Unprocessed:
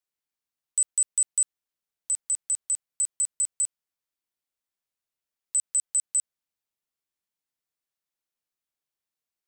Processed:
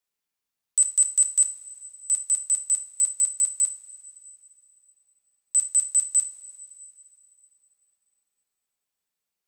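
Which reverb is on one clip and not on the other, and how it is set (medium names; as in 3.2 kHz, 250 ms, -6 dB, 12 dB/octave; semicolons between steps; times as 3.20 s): two-slope reverb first 0.3 s, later 3 s, from -18 dB, DRR 4 dB; trim +2.5 dB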